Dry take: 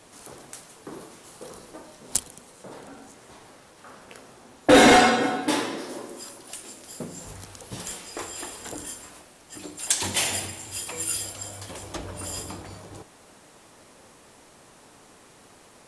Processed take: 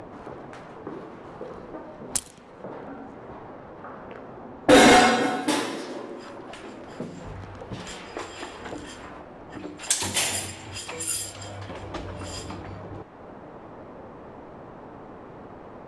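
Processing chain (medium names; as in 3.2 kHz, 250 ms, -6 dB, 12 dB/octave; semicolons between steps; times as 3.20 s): level-controlled noise filter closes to 860 Hz, open at -26 dBFS; upward compressor, threshold -30 dBFS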